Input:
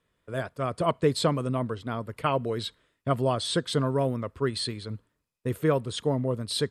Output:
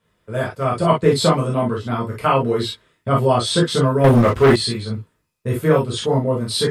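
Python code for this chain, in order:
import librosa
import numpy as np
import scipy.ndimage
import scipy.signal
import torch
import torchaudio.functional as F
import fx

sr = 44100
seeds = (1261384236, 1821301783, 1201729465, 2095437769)

y = fx.rev_gated(x, sr, seeds[0], gate_ms=80, shape='flat', drr_db=-5.0)
y = fx.leveller(y, sr, passes=3, at=(4.04, 4.56))
y = y * 10.0 ** (3.0 / 20.0)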